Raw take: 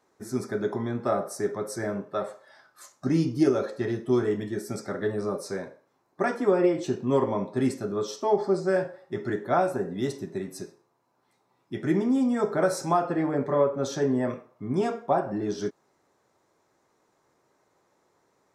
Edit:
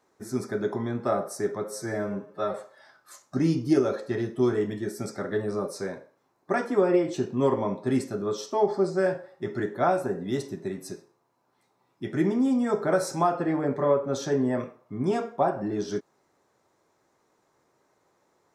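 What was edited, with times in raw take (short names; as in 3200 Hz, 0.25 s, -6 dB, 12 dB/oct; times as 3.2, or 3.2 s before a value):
1.64–2.24 stretch 1.5×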